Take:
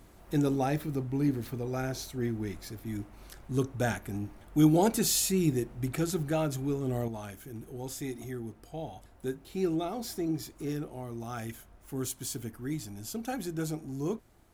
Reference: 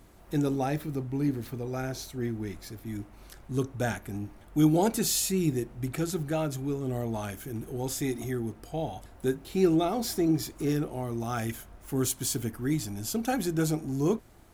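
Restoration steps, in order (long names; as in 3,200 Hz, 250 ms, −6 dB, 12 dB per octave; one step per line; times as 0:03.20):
level 0 dB, from 0:07.08 +6.5 dB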